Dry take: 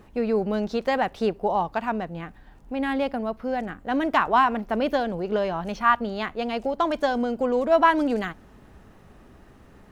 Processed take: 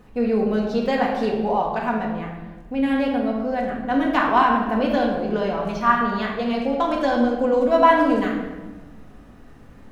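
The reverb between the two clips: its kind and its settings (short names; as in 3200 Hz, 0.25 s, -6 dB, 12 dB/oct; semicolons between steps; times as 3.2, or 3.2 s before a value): shoebox room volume 790 m³, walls mixed, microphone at 1.9 m; gain -1.5 dB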